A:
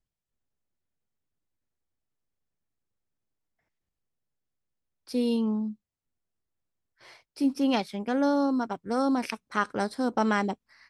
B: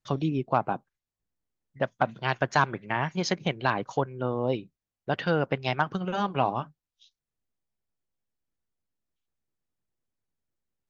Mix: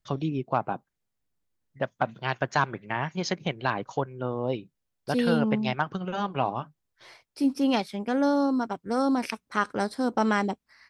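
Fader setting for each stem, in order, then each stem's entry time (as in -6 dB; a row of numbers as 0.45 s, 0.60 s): +1.0 dB, -1.5 dB; 0.00 s, 0.00 s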